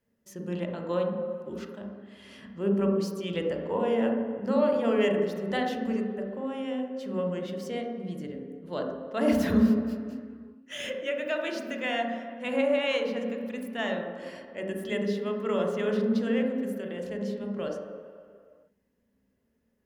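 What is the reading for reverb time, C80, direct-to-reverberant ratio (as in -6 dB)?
2.1 s, 4.5 dB, 1.0 dB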